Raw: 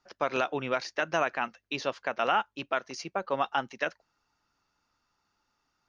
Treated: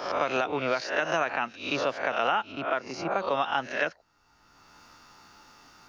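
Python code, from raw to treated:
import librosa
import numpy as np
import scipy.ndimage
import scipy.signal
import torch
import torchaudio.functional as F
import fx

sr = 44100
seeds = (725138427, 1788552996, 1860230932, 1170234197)

y = fx.spec_swells(x, sr, rise_s=0.48)
y = fx.lowpass(y, sr, hz=fx.line((2.51, 1400.0), (3.1, 2100.0)), slope=6, at=(2.51, 3.1), fade=0.02)
y = fx.band_squash(y, sr, depth_pct=70)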